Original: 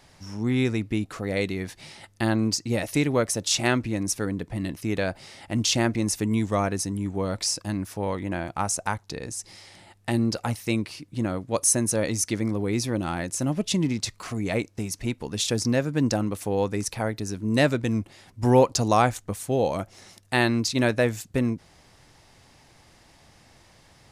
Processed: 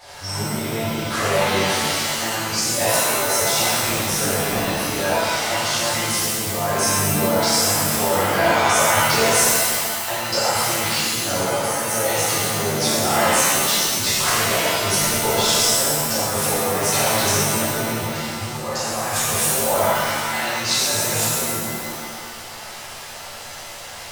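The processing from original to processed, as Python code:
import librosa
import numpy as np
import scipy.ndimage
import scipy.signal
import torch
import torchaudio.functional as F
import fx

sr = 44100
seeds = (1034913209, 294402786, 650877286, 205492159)

y = fx.over_compress(x, sr, threshold_db=-32.0, ratio=-1.0)
y = fx.low_shelf_res(y, sr, hz=380.0, db=-10.0, q=1.5)
y = fx.rev_shimmer(y, sr, seeds[0], rt60_s=1.6, semitones=7, shimmer_db=-2, drr_db=-12.0)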